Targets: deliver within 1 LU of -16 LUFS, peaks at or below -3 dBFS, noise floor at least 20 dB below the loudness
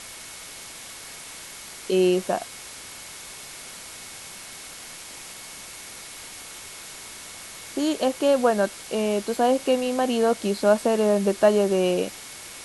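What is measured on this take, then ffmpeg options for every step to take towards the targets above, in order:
steady tone 2.2 kHz; tone level -51 dBFS; noise floor -41 dBFS; noise floor target -43 dBFS; loudness -22.5 LUFS; peak level -6.5 dBFS; loudness target -16.0 LUFS
-> -af "bandreject=f=2200:w=30"
-af "afftdn=nr=6:nf=-41"
-af "volume=2.11,alimiter=limit=0.708:level=0:latency=1"

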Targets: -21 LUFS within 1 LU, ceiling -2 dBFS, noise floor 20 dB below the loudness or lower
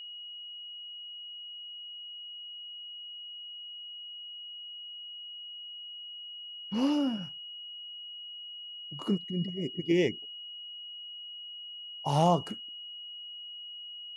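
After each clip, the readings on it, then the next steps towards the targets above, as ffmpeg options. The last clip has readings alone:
steady tone 2.9 kHz; tone level -41 dBFS; loudness -35.5 LUFS; peak level -12.0 dBFS; loudness target -21.0 LUFS
-> -af "bandreject=f=2900:w=30"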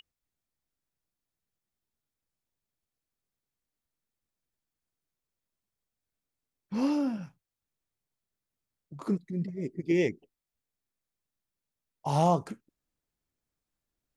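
steady tone not found; loudness -30.5 LUFS; peak level -12.5 dBFS; loudness target -21.0 LUFS
-> -af "volume=2.99"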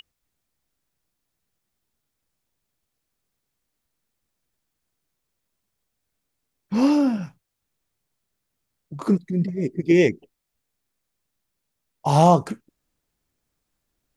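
loudness -21.0 LUFS; peak level -3.0 dBFS; noise floor -80 dBFS

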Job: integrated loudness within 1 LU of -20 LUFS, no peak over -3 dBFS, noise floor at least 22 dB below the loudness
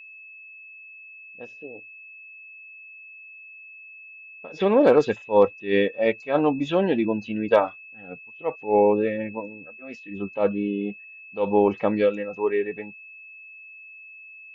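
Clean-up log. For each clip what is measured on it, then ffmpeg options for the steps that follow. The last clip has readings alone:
steady tone 2.6 kHz; tone level -42 dBFS; loudness -23.0 LUFS; peak level -5.0 dBFS; loudness target -20.0 LUFS
-> -af "bandreject=f=2600:w=30"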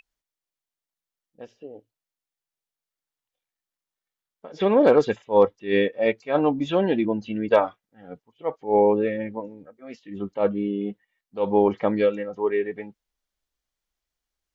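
steady tone not found; loudness -23.0 LUFS; peak level -5.0 dBFS; loudness target -20.0 LUFS
-> -af "volume=1.41,alimiter=limit=0.708:level=0:latency=1"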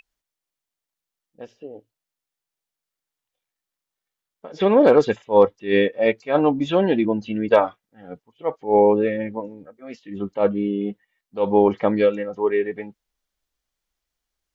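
loudness -20.0 LUFS; peak level -3.0 dBFS; noise floor -87 dBFS

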